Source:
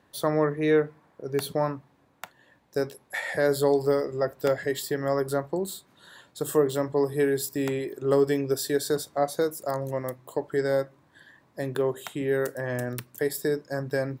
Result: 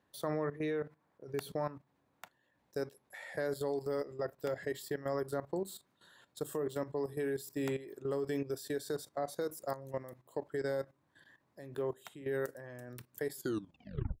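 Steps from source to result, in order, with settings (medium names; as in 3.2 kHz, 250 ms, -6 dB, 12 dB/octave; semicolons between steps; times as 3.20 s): tape stop on the ending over 0.86 s; level held to a coarse grid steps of 14 dB; trim -6 dB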